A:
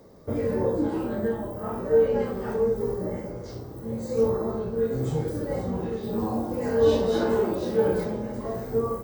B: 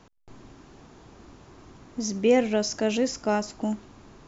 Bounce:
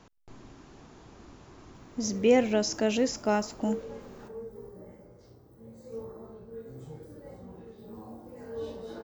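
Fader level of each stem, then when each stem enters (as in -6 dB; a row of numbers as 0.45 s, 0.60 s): -17.5 dB, -1.5 dB; 1.75 s, 0.00 s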